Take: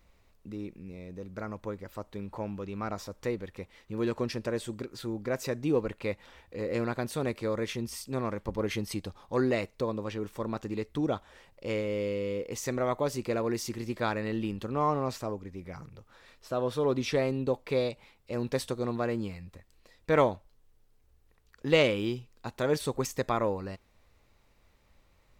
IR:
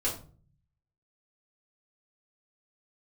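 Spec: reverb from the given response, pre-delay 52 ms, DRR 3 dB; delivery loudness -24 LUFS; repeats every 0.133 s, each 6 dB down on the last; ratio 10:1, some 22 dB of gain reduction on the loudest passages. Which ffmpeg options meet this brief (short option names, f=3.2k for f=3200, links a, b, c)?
-filter_complex "[0:a]acompressor=threshold=-41dB:ratio=10,aecho=1:1:133|266|399|532|665|798:0.501|0.251|0.125|0.0626|0.0313|0.0157,asplit=2[a][b];[1:a]atrim=start_sample=2205,adelay=52[c];[b][c]afir=irnorm=-1:irlink=0,volume=-9.5dB[d];[a][d]amix=inputs=2:normalize=0,volume=18dB"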